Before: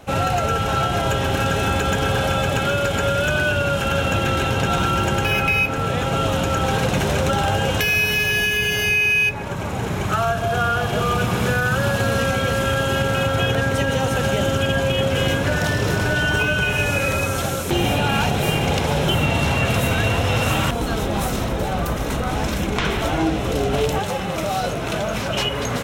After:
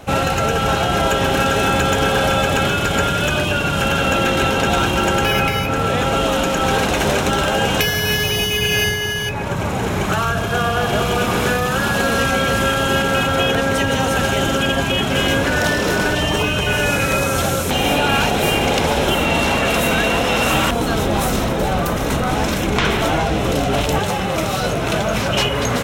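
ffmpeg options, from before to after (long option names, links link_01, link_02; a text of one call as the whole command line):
ffmpeg -i in.wav -filter_complex "[0:a]asettb=1/sr,asplit=3[link_01][link_02][link_03];[link_01]atrim=end=6.034[link_04];[link_02]atrim=start=6.03:end=6.61,asetpts=PTS-STARTPTS,afade=type=in:duration=0.004:curve=qsin,afade=type=out:start_time=0.576:duration=0.004:curve=qsin,asubboost=boost=9:cutoff=210[link_05];[link_03]atrim=start=6.606[link_06];[link_04][link_05]acrossfade=duration=0.004:curve1=hsin:curve2=qsin[link_07];[link_07][link_06]acrossfade=duration=0.004:curve1=qsin:curve2=hsin,afftfilt=real='re*lt(hypot(re,im),0.631)':imag='im*lt(hypot(re,im),0.631)':win_size=1024:overlap=0.75,acontrast=28" out.wav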